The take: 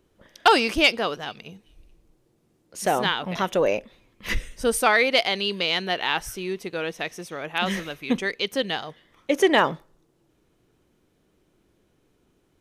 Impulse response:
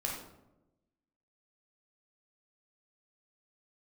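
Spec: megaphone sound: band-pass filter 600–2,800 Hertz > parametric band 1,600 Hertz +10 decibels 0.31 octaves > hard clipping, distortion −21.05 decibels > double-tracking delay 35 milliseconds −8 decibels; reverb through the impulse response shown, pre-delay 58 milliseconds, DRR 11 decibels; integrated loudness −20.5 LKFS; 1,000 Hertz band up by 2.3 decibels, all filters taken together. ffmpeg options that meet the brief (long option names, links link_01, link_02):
-filter_complex "[0:a]equalizer=frequency=1000:width_type=o:gain=3,asplit=2[link_01][link_02];[1:a]atrim=start_sample=2205,adelay=58[link_03];[link_02][link_03]afir=irnorm=-1:irlink=0,volume=-14.5dB[link_04];[link_01][link_04]amix=inputs=2:normalize=0,highpass=600,lowpass=2800,equalizer=frequency=1600:width_type=o:width=0.31:gain=10,asoftclip=type=hard:threshold=-7dB,asplit=2[link_05][link_06];[link_06]adelay=35,volume=-8dB[link_07];[link_05][link_07]amix=inputs=2:normalize=0,volume=1.5dB"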